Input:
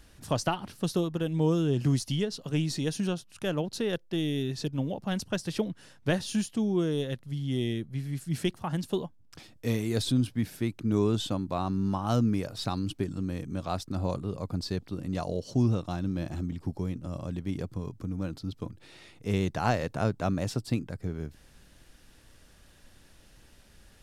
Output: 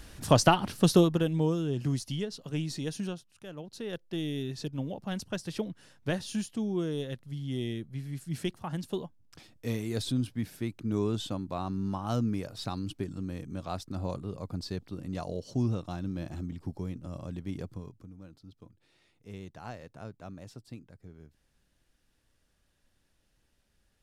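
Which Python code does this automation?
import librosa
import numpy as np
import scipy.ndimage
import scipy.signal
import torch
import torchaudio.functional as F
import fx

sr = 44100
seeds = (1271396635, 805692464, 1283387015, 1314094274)

y = fx.gain(x, sr, db=fx.line((1.02, 7.0), (1.57, -4.5), (3.03, -4.5), (3.47, -14.5), (4.08, -4.0), (17.71, -4.0), (18.15, -16.0)))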